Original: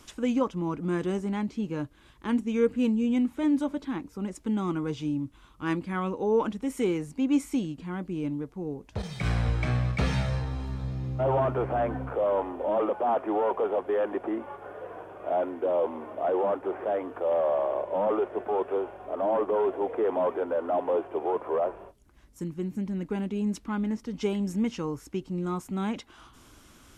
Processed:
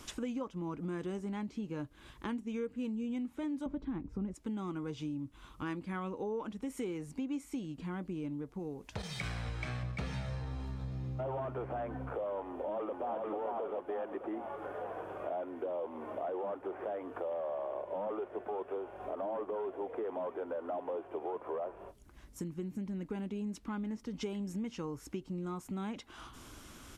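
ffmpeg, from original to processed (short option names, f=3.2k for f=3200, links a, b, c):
-filter_complex "[0:a]asettb=1/sr,asplit=3[a][b][c];[a]atrim=end=3.664[d];[b]atrim=start=3.66:end=4.34,asetpts=PTS-STARTPTS,afade=t=in:d=0.004:c=qsin,afade=t=out:st=0.676:d=0.004:c=qsin,aemphasis=mode=reproduction:type=riaa[e];[c]atrim=start=4.336[f];[d][e]acrossfade=d=0.004:c1=hsin:c2=qsin[g];[g][f]acrossfade=d=0.004:c1=qsin:c2=hsin,asettb=1/sr,asplit=3[h][i][j];[h]atrim=end=8.594[k];[i]atrim=start=8.59:end=9.83,asetpts=PTS-STARTPTS,afade=t=in:d=0.004:c=qsin,afade=t=out:st=1.236:d=0.004:c=qsin,tiltshelf=f=970:g=-4[l];[j]atrim=start=9.826[m];[k][l]acrossfade=d=0.004:c1=hsin:c2=qsin[n];[n][m]acrossfade=d=0.004:c1=qsin:c2=hsin,asplit=2[o][p];[p]afade=t=in:st=12.48:d=0.01,afade=t=out:st=13.16:d=0.01,aecho=0:1:440|880|1320|1760|2200|2640|3080:0.841395|0.420698|0.210349|0.105174|0.0525872|0.0262936|0.0131468[q];[o][q]amix=inputs=2:normalize=0,acompressor=threshold=-40dB:ratio=4,volume=2dB"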